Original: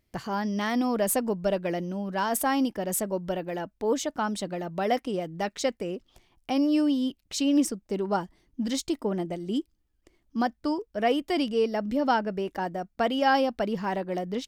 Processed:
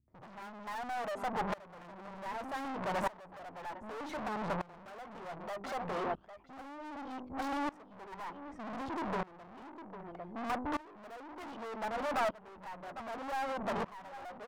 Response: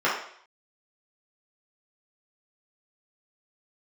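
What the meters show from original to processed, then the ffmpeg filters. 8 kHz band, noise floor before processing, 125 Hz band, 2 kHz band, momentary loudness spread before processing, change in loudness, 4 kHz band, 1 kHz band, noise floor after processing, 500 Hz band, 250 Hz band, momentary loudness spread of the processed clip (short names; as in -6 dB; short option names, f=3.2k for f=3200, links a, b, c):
-22.0 dB, -72 dBFS, -11.5 dB, -8.0 dB, 8 LU, -11.5 dB, -15.0 dB, -7.5 dB, -56 dBFS, -12.5 dB, -16.0 dB, 14 LU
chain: -filter_complex "[0:a]lowpass=1.6k,bandreject=f=50:t=h:w=6,bandreject=f=100:t=h:w=6,bandreject=f=150:t=h:w=6,bandreject=f=200:t=h:w=6,bandreject=f=250:t=h:w=6,bandreject=f=300:t=h:w=6,bandreject=f=350:t=h:w=6,bandreject=f=400:t=h:w=6,acrossover=split=220[a][b];[b]adelay=80[c];[a][c]amix=inputs=2:normalize=0,aphaser=in_gain=1:out_gain=1:delay=1.6:decay=0.7:speed=0.45:type=triangular,asplit=2[d][e];[e]aecho=0:1:802:0.112[f];[d][f]amix=inputs=2:normalize=0,acompressor=threshold=-34dB:ratio=5,highpass=67,aeval=exprs='(tanh(501*val(0)+0.6)-tanh(0.6))/501':c=same,equalizer=f=950:w=0.81:g=12.5,aeval=exprs='0.01*(cos(1*acos(clip(val(0)/0.01,-1,1)))-cos(1*PI/2))+0.00282*(cos(2*acos(clip(val(0)/0.01,-1,1)))-cos(2*PI/2))':c=same,aeval=exprs='val(0)*pow(10,-22*if(lt(mod(-0.65*n/s,1),2*abs(-0.65)/1000),1-mod(-0.65*n/s,1)/(2*abs(-0.65)/1000),(mod(-0.65*n/s,1)-2*abs(-0.65)/1000)/(1-2*abs(-0.65)/1000))/20)':c=same,volume=17dB"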